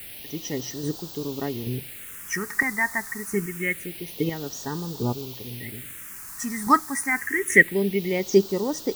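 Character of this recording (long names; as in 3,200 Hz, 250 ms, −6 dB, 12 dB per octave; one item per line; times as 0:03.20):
chopped level 1.2 Hz, depth 60%, duty 15%
a quantiser's noise floor 8 bits, dither triangular
phaser sweep stages 4, 0.26 Hz, lowest notch 470–2,100 Hz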